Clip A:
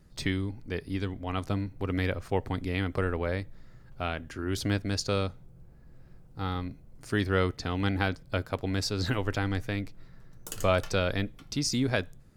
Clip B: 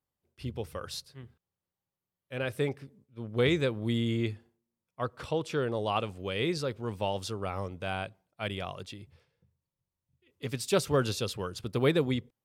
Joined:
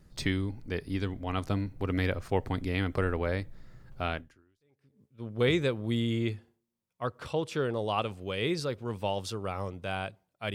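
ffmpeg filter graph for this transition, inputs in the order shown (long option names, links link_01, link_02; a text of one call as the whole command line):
ffmpeg -i cue0.wav -i cue1.wav -filter_complex "[0:a]apad=whole_dur=10.54,atrim=end=10.54,atrim=end=5.02,asetpts=PTS-STARTPTS[link_01];[1:a]atrim=start=2.14:end=8.52,asetpts=PTS-STARTPTS[link_02];[link_01][link_02]acrossfade=duration=0.86:curve1=exp:curve2=exp" out.wav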